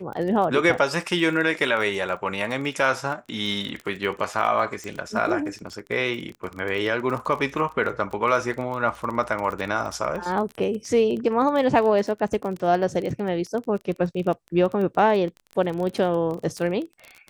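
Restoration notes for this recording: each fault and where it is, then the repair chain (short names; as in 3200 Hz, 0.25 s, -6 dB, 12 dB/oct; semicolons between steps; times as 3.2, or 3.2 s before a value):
crackle 23/s -29 dBFS
4.84 pop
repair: de-click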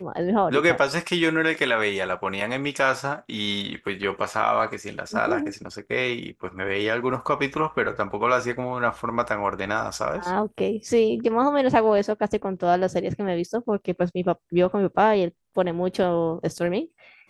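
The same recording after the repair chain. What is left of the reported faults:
none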